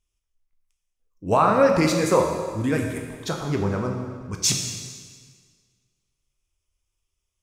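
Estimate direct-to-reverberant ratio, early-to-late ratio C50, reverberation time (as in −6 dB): 1.5 dB, 4.5 dB, 1.7 s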